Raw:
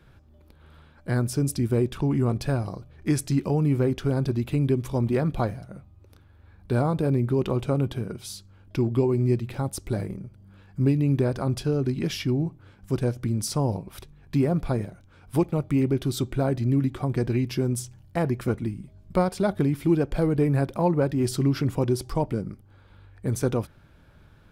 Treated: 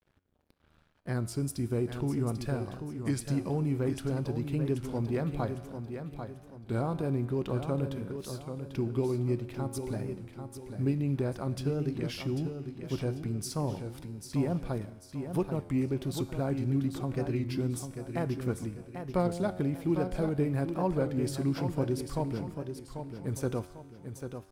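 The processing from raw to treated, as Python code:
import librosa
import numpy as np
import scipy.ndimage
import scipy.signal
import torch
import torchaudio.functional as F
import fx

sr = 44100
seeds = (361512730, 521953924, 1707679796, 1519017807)

y = np.sign(x) * np.maximum(np.abs(x) - 10.0 ** (-51.5 / 20.0), 0.0)
y = fx.comb_fb(y, sr, f0_hz=91.0, decay_s=1.6, harmonics='all', damping=0.0, mix_pct=60)
y = fx.echo_feedback(y, sr, ms=793, feedback_pct=38, wet_db=-8)
y = fx.record_warp(y, sr, rpm=33.33, depth_cents=100.0)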